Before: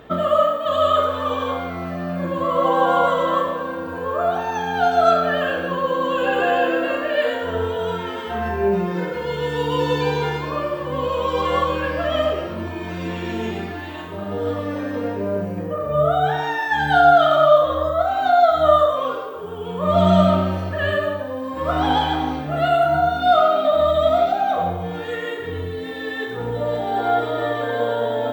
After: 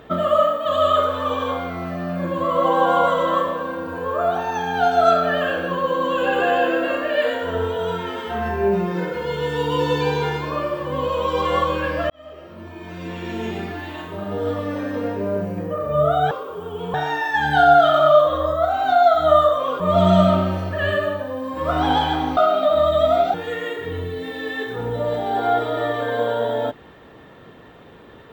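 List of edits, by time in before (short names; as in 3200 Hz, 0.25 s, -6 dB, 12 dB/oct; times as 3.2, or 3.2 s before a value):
12.1–13.69 fade in linear
19.17–19.8 move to 16.31
22.37–23.39 cut
24.36–24.95 cut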